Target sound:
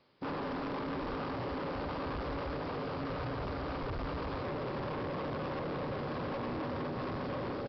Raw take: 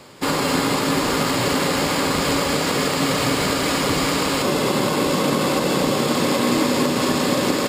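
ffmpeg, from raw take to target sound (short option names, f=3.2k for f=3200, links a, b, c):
-af "afwtdn=0.1,asubboost=boost=12:cutoff=64,aresample=11025,asoftclip=type=tanh:threshold=-27dB,aresample=44100,volume=-7.5dB"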